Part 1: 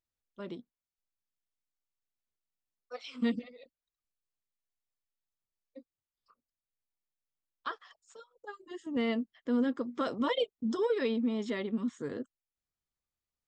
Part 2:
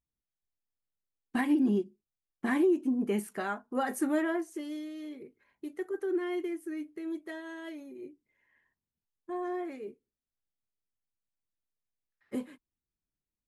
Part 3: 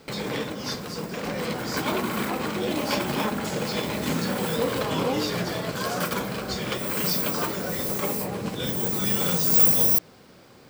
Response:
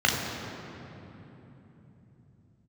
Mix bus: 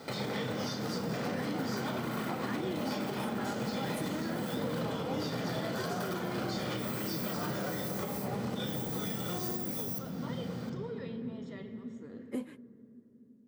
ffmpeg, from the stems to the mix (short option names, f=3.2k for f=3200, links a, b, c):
-filter_complex "[0:a]volume=-13.5dB,asplit=2[a][b];[b]volume=-20dB[c];[1:a]acompressor=threshold=-29dB:ratio=6,volume=-0.5dB[d];[2:a]highpass=83,acompressor=threshold=-31dB:ratio=6,volume=1.5dB,asplit=2[e][f];[f]volume=-16dB[g];[3:a]atrim=start_sample=2205[h];[c][g]amix=inputs=2:normalize=0[i];[i][h]afir=irnorm=-1:irlink=0[j];[a][d][e][j]amix=inputs=4:normalize=0,alimiter=level_in=1.5dB:limit=-24dB:level=0:latency=1:release=312,volume=-1.5dB"